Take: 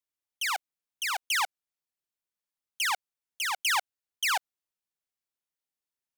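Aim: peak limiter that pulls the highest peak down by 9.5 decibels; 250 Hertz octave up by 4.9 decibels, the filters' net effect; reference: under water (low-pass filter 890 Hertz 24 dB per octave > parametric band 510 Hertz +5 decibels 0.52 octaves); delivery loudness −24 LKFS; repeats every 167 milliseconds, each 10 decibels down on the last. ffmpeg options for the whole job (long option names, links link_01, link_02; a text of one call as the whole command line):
ffmpeg -i in.wav -af "equalizer=frequency=250:width_type=o:gain=6.5,alimiter=level_in=4dB:limit=-24dB:level=0:latency=1,volume=-4dB,lowpass=frequency=890:width=0.5412,lowpass=frequency=890:width=1.3066,equalizer=frequency=510:width_type=o:width=0.52:gain=5,aecho=1:1:167|334|501|668:0.316|0.101|0.0324|0.0104,volume=24dB" out.wav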